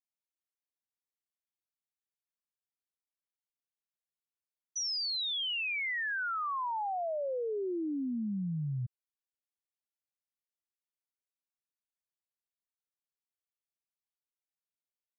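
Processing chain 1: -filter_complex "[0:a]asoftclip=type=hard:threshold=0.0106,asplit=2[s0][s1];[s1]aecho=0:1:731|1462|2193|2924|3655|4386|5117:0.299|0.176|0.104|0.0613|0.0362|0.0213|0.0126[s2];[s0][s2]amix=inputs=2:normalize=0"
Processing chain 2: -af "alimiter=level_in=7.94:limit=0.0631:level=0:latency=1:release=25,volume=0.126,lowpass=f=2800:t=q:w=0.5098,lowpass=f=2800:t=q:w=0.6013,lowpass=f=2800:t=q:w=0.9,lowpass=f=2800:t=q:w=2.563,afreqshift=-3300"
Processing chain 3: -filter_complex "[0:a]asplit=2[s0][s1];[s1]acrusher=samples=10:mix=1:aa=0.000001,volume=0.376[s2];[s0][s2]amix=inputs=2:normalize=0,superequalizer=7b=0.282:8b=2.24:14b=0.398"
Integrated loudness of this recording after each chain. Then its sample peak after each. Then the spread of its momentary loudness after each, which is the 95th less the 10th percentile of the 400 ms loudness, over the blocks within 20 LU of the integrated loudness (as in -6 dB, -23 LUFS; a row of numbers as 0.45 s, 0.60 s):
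-39.5 LUFS, -43.0 LUFS, -31.0 LUFS; -35.0 dBFS, -41.5 dBFS, -21.0 dBFS; 19 LU, 6 LU, 11 LU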